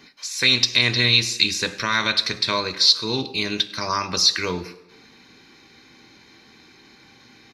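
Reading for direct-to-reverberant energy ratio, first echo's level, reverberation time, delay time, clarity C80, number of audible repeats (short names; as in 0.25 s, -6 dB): 9.0 dB, -22.0 dB, 1.0 s, 0.101 s, 17.0 dB, 1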